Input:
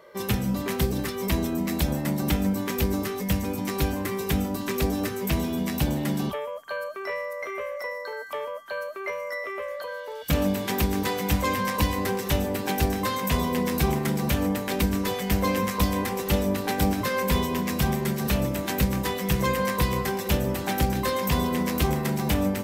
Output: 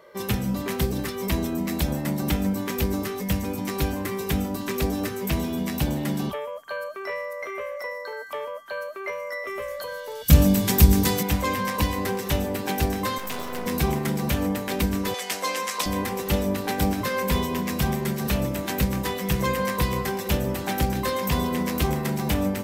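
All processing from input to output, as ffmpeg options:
-filter_complex "[0:a]asettb=1/sr,asplit=3[a][b][c];[a]atrim=end=9.474[d];[b]atrim=start=9.47:end=11.23,asetpts=PTS-STARTPTS,afade=t=in:d=0.004:c=qsin,afade=t=out:st=1.756:d=0.004:c=qsin,bass=f=250:g=13,treble=f=4k:g=10,bandreject=f=50:t=h:w=6,bandreject=f=100:t=h:w=6,bandreject=f=150:t=h:w=6,bandreject=f=200:t=h:w=6,bandreject=f=250:t=h:w=6,bandreject=f=300:t=h:w=6,bandreject=f=350:t=h:w=6[e];[c]atrim=start=11.226[f];[d][e]acrossfade=d=0.004:c1=hsin:c2=qsin[g];[g][f]acrossfade=d=0.004:c1=qsin:c2=hsin,asettb=1/sr,asplit=3[h][i][j];[h]atrim=end=13.184[k];[i]atrim=start=13.18:end=13.66,asetpts=PTS-STARTPTS,afade=t=in:d=0.004:c=qsin,afade=t=out:st=0.476:d=0.004:c=qsin,highpass=270,aeval=exprs='max(val(0),0)':c=same[l];[j]atrim=start=13.656[m];[k][l]acrossfade=d=0.004:c1=hsin:c2=qsin[n];[n][m]acrossfade=d=0.004:c1=qsin:c2=hsin,asettb=1/sr,asplit=3[o][p][q];[o]atrim=end=15.144[r];[p]atrim=start=15.14:end=15.86,asetpts=PTS-STARTPTS,afade=t=in:d=0.004:c=qsin,afade=t=out:st=0.716:d=0.004:c=qsin,highpass=570,lowpass=8k,highshelf=f=4.9k:g=12[s];[q]atrim=start=15.856[t];[r][s]acrossfade=d=0.004:c1=hsin:c2=qsin[u];[u][t]acrossfade=d=0.004:c1=qsin:c2=hsin"

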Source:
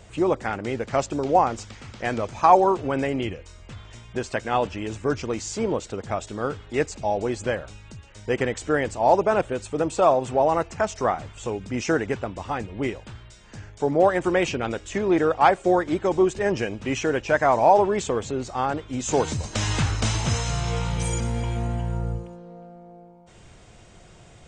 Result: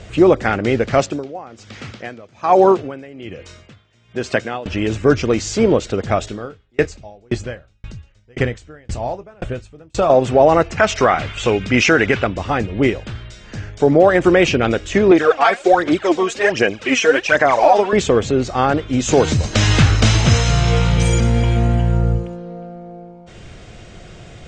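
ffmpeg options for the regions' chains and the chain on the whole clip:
-filter_complex "[0:a]asettb=1/sr,asplit=3[a][b][c];[a]atrim=end=1.004[d];[b]atrim=start=1:end=4.66,asetpts=PTS-STARTPTS,afade=t=in:d=0.004:c=qsin,afade=t=out:st=3.656:d=0.004:c=qsin,highpass=110,aeval=exprs='val(0)*pow(10,-23*(0.5-0.5*cos(2*PI*1.2*n/s))/20)':c=same[e];[c]atrim=start=4.656[f];[d][e]acrossfade=d=0.004:c1=hsin:c2=qsin[g];[g][f]acrossfade=d=0.004:c1=qsin:c2=hsin,asettb=1/sr,asplit=3[h][i][j];[h]atrim=end=6.264[k];[i]atrim=start=6.26:end=10.1,asetpts=PTS-STARTPTS,afade=t=in:d=0.004:c=qsin,afade=t=out:st=3.836:d=0.004:c=qsin,asubboost=boost=3.5:cutoff=170,asplit=2[l][m];[m]adelay=25,volume=-12dB[n];[l][n]amix=inputs=2:normalize=0,atrim=end_sample=169344,aeval=exprs='val(0)*pow(10,-39*if(lt(mod(1.9*n/s,1),2*abs(1.9)/1000),1-mod(1.9*n/s,1)/(2*abs(1.9)/1000),(mod(1.9*n/s,1)-2*abs(1.9)/1000)/(1-2*abs(1.9)/1000))/20)':c=same[o];[j]atrim=start=10.096[p];[k][o]acrossfade=d=0.004:c1=hsin:c2=qsin[q];[q][p]acrossfade=d=0.004:c1=qsin:c2=hsin,asettb=1/sr,asplit=3[r][s][t];[r]atrim=end=10.774[u];[s]atrim=start=10.77:end=12.27,asetpts=PTS-STARTPTS,afade=t=in:d=0.004:c=qsin,afade=t=out:st=1.496:d=0.004:c=qsin,equalizer=f=2.2k:t=o:w=2.3:g=9.5,bandreject=f=1.8k:w=22[v];[t]atrim=start=12.266[w];[u][v]acrossfade=d=0.004:c1=hsin:c2=qsin[x];[x][w]acrossfade=d=0.004:c1=qsin:c2=hsin,asettb=1/sr,asplit=3[y][z][aa];[y]atrim=end=15.114[ab];[z]atrim=start=15.11:end=17.93,asetpts=PTS-STARTPTS,afade=t=in:d=0.004:c=qsin,afade=t=out:st=2.816:d=0.004:c=qsin,highpass=f=810:p=1,aphaser=in_gain=1:out_gain=1:delay=4.5:decay=0.69:speed=1.3:type=sinusoidal[ac];[aa]atrim=start=17.926[ad];[ab][ac]acrossfade=d=0.004:c1=hsin:c2=qsin[ae];[ae][ad]acrossfade=d=0.004:c1=qsin:c2=hsin,lowpass=5.5k,equalizer=f=930:t=o:w=0.52:g=-7,alimiter=level_in=12.5dB:limit=-1dB:release=50:level=0:latency=1,volume=-1dB"

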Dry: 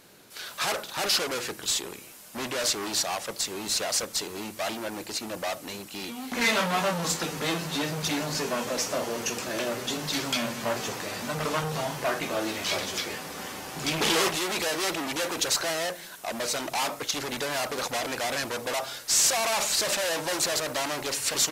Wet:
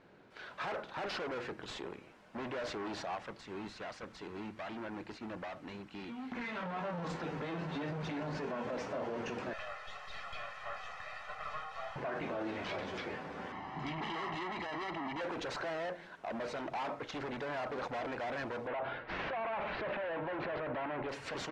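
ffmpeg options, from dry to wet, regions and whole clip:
-filter_complex "[0:a]asettb=1/sr,asplit=3[a][b][c];[a]atrim=end=3.174[d];[b]atrim=start=3.17:end=6.63,asetpts=PTS-STARTPTS,afade=t=in:d=0.004:c=qsin,afade=t=out:st=3.456:d=0.004:c=qsin,equalizer=f=560:t=o:w=1.1:g=-6.5,acompressor=threshold=-31dB:ratio=3:attack=3.2:release=140:knee=1:detection=peak[e];[c]atrim=start=6.626[f];[d][e]acrossfade=d=0.004:c1=hsin:c2=qsin[g];[g][f]acrossfade=d=0.004:c1=qsin:c2=hsin,asettb=1/sr,asplit=3[h][i][j];[h]atrim=end=9.534[k];[i]atrim=start=9.53:end=11.96,asetpts=PTS-STARTPTS,afade=t=in:d=0.004:c=qsin,afade=t=out:st=2.426:d=0.004:c=qsin,highpass=f=890:w=0.5412,highpass=f=890:w=1.3066,aeval=exprs='(tanh(44.7*val(0)+0.4)-tanh(0.4))/44.7':c=same,aecho=1:1:1.6:0.91,atrim=end_sample=107163[l];[j]atrim=start=11.956[m];[k][l]acrossfade=d=0.004:c1=hsin:c2=qsin[n];[n][m]acrossfade=d=0.004:c1=qsin:c2=hsin,asettb=1/sr,asplit=3[o][p][q];[o]atrim=end=13.524[r];[p]atrim=start=13.52:end=15.21,asetpts=PTS-STARTPTS,afade=t=in:d=0.004:c=qsin,afade=t=out:st=1.686:d=0.004:c=qsin,lowshelf=f=180:g=-7,aecho=1:1:1:0.71,atrim=end_sample=74529,adynamicsmooth=sensitivity=2.5:basefreq=4.7k[s];[q]atrim=start=15.206[t];[r][s]acrossfade=d=0.004:c1=hsin:c2=qsin[u];[u][t]acrossfade=d=0.004:c1=qsin:c2=hsin,asettb=1/sr,asplit=3[v][w][x];[v]atrim=end=18.674[y];[w]atrim=start=18.67:end=21.09,asetpts=PTS-STARTPTS,afade=t=in:d=0.004:c=qsin,afade=t=out:st=2.416:d=0.004:c=qsin,lowpass=f=2.9k:w=0.5412,lowpass=f=2.9k:w=1.3066,acontrast=82[z];[x]atrim=start=21.086[aa];[y][z]acrossfade=d=0.004:c1=hsin:c2=qsin[ab];[ab][aa]acrossfade=d=0.004:c1=qsin:c2=hsin,lowpass=1.8k,bandreject=f=1.2k:w=23,alimiter=level_in=2.5dB:limit=-24dB:level=0:latency=1:release=21,volume=-2.5dB,volume=-4dB"

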